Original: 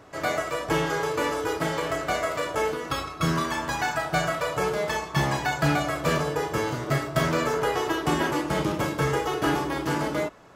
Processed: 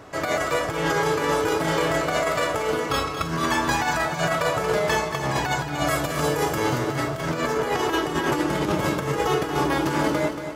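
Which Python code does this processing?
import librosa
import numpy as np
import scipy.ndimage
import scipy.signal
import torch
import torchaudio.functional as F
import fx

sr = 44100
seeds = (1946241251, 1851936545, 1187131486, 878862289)

y = fx.high_shelf(x, sr, hz=fx.line((5.86, 5200.0), (6.56, 8100.0)), db=10.0, at=(5.86, 6.56), fade=0.02)
y = fx.over_compress(y, sr, threshold_db=-27.0, ratio=-0.5)
y = fx.echo_feedback(y, sr, ms=230, feedback_pct=41, wet_db=-9)
y = y * librosa.db_to_amplitude(4.0)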